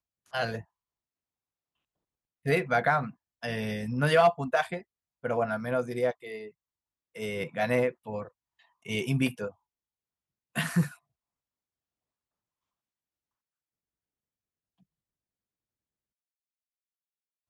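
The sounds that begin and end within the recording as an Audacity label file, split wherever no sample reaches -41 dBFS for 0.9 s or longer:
2.460000	9.500000	sound
10.560000	10.930000	sound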